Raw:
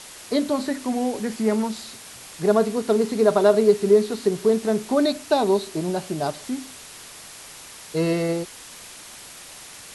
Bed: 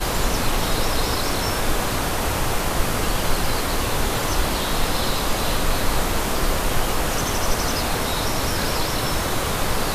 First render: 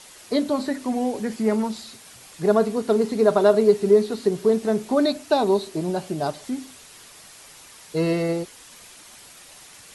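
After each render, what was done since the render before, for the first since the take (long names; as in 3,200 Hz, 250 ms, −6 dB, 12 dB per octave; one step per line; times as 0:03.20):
broadband denoise 6 dB, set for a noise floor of −42 dBFS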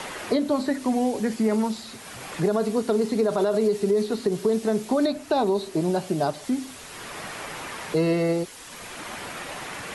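brickwall limiter −13.5 dBFS, peak gain reduction 9 dB
multiband upward and downward compressor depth 70%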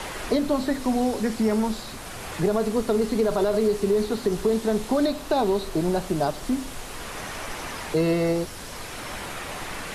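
mix in bed −17 dB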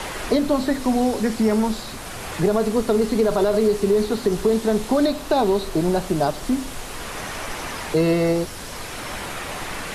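level +3.5 dB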